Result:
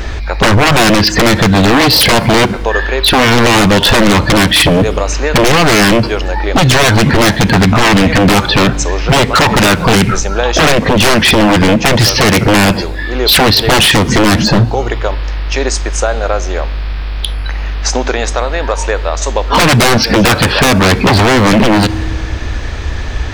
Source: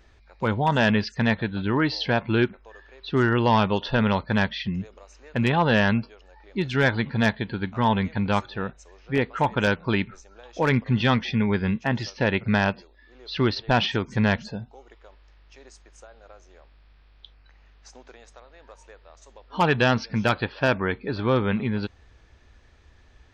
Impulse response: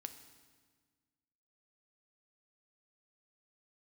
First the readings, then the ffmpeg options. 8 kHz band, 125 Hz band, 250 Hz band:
n/a, +14.0 dB, +14.0 dB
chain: -filter_complex "[0:a]acompressor=threshold=-27dB:ratio=12,aeval=exprs='0.0224*(abs(mod(val(0)/0.0224+3,4)-2)-1)':c=same,asplit=2[a][b];[1:a]atrim=start_sample=2205,asetrate=48510,aresample=44100,lowshelf=f=150:g=8.5[c];[b][c]afir=irnorm=-1:irlink=0,volume=-4.5dB[d];[a][d]amix=inputs=2:normalize=0,alimiter=level_in=33dB:limit=-1dB:release=50:level=0:latency=1,volume=-1dB"

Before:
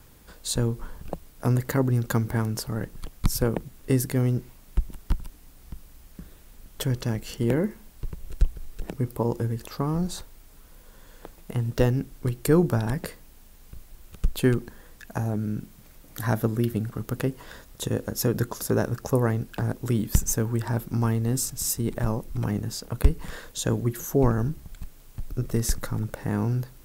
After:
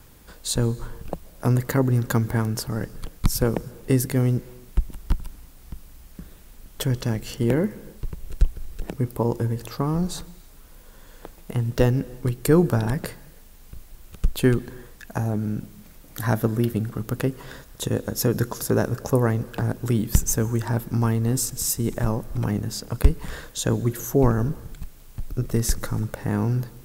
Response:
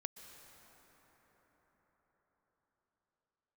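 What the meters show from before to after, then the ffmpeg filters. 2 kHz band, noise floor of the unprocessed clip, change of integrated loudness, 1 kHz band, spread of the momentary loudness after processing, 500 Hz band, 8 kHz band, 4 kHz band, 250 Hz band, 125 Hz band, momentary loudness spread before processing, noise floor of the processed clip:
+2.5 dB, -51 dBFS, +2.5 dB, +2.5 dB, 15 LU, +2.5 dB, +2.5 dB, +2.5 dB, +2.5 dB, +2.5 dB, 15 LU, -47 dBFS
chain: -filter_complex "[0:a]asplit=2[a][b];[1:a]atrim=start_sample=2205,afade=t=out:st=0.4:d=0.01,atrim=end_sample=18081[c];[b][c]afir=irnorm=-1:irlink=0,volume=-5.5dB[d];[a][d]amix=inputs=2:normalize=0"

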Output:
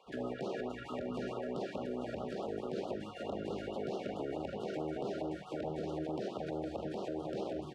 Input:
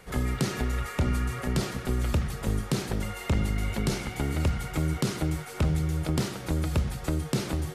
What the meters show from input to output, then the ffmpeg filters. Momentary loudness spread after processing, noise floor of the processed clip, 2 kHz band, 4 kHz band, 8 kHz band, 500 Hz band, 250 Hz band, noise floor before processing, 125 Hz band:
2 LU, -48 dBFS, -13.5 dB, -13.5 dB, under -20 dB, -1.5 dB, -9.0 dB, -40 dBFS, -21.0 dB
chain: -filter_complex "[0:a]highshelf=f=2.6k:g=-8,afwtdn=0.0355,highpass=730,lowpass=4k,bandreject=f=2.1k:w=5.6,asplit=2[a][b];[b]asoftclip=type=hard:threshold=-39dB,volume=-5.5dB[c];[a][c]amix=inputs=2:normalize=0,aecho=1:1:764:0.473,acompressor=threshold=-44dB:ratio=2,asplit=2[d][e];[e]adelay=41,volume=-13dB[f];[d][f]amix=inputs=2:normalize=0,alimiter=level_in=16dB:limit=-24dB:level=0:latency=1:release=26,volume=-16dB,afftfilt=real='re*(1-between(b*sr/1024,920*pow(2000/920,0.5+0.5*sin(2*PI*4.6*pts/sr))/1.41,920*pow(2000/920,0.5+0.5*sin(2*PI*4.6*pts/sr))*1.41))':imag='im*(1-between(b*sr/1024,920*pow(2000/920,0.5+0.5*sin(2*PI*4.6*pts/sr))/1.41,920*pow(2000/920,0.5+0.5*sin(2*PI*4.6*pts/sr))*1.41))':win_size=1024:overlap=0.75,volume=10.5dB"

